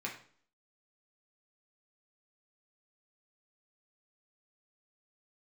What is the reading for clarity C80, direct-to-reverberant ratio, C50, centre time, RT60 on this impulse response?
12.0 dB, -2.5 dB, 8.0 dB, 23 ms, 0.50 s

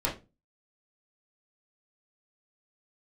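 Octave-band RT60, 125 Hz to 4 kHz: 0.45, 0.40, 0.30, 0.25, 0.25, 0.20 s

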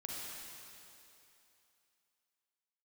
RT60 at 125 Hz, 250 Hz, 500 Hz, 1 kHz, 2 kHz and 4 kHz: 2.4, 2.6, 2.9, 2.9, 2.9, 2.8 s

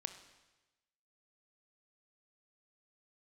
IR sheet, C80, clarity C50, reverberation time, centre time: 12.0 dB, 10.0 dB, 1.1 s, 13 ms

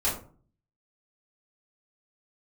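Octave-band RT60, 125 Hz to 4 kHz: 0.75, 0.60, 0.45, 0.40, 0.30, 0.25 s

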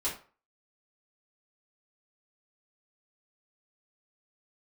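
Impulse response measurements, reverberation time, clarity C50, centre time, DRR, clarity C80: 0.40 s, 7.5 dB, 27 ms, -8.5 dB, 13.0 dB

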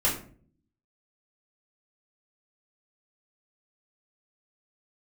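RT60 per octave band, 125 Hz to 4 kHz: 0.85, 0.80, 0.55, 0.40, 0.35, 0.30 s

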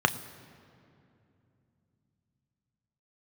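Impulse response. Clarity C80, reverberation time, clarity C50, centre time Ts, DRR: 16.0 dB, 2.7 s, 15.5 dB, 9 ms, 9.0 dB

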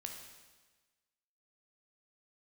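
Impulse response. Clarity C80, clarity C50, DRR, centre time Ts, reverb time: 6.5 dB, 4.5 dB, 2.0 dB, 41 ms, 1.3 s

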